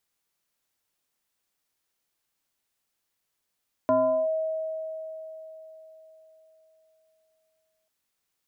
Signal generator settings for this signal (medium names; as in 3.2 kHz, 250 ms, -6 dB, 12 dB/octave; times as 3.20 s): FM tone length 3.99 s, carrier 637 Hz, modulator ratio 0.59, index 0.87, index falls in 0.39 s linear, decay 4.10 s, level -17.5 dB